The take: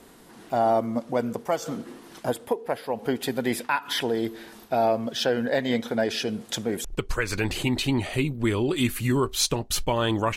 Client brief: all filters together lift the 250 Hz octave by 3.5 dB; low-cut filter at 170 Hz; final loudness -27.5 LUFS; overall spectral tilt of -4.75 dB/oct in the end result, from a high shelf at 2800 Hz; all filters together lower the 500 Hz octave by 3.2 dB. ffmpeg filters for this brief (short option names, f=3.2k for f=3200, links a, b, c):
-af "highpass=170,equalizer=f=250:t=o:g=6.5,equalizer=f=500:t=o:g=-6,highshelf=f=2.8k:g=-4.5,volume=-0.5dB"